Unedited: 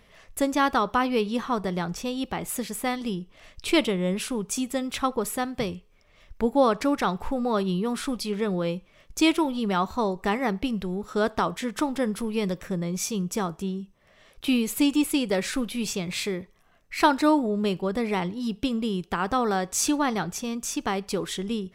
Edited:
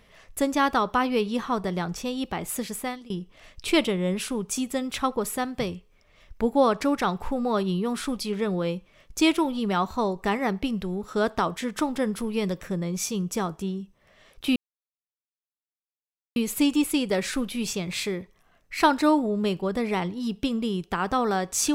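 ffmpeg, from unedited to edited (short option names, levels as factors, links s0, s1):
-filter_complex "[0:a]asplit=3[s0][s1][s2];[s0]atrim=end=3.1,asetpts=PTS-STARTPTS,afade=t=out:st=2.74:d=0.36:silence=0.0668344[s3];[s1]atrim=start=3.1:end=14.56,asetpts=PTS-STARTPTS,afade=t=in:d=0.004:c=hsin:silence=0.0668344,afade=t=out:st=11.456:d=0.004:c=hsin,apad=pad_dur=1.8[s4];[s2]atrim=start=14.56,asetpts=PTS-STARTPTS,afade=t=in:d=0.004:c=hsin[s5];[s3][s4][s5]concat=n=3:v=0:a=1"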